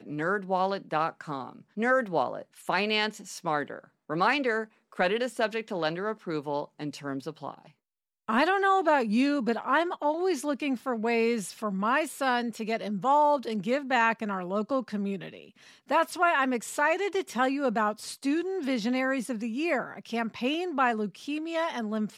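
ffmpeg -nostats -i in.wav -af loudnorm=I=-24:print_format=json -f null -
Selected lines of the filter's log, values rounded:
"input_i" : "-28.5",
"input_tp" : "-12.0",
"input_lra" : "3.1",
"input_thresh" : "-38.8",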